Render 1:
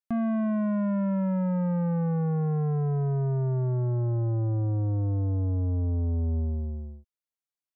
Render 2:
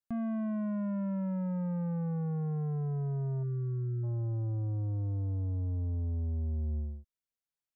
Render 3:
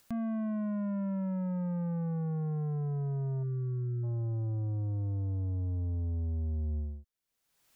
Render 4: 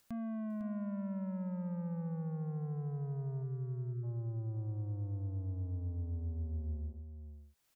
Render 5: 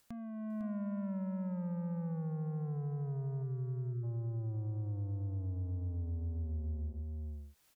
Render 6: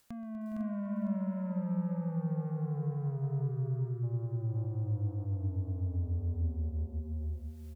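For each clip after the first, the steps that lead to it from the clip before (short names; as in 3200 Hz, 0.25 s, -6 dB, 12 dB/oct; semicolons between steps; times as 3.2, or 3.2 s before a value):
low shelf 170 Hz +7 dB; spectral delete 3.43–4.03, 500–1100 Hz; limiter -26 dBFS, peak gain reduction 7.5 dB; gain -4 dB
upward compressor, threshold -44 dBFS
echo 0.503 s -9.5 dB; gain -6 dB
compressor 4:1, threshold -44 dBFS, peak gain reduction 7.5 dB; wow and flutter 19 cents; AGC gain up to 7.5 dB
tapped delay 0.126/0.245/0.413/0.46 s -17/-13.5/-12/-4 dB; gain +2 dB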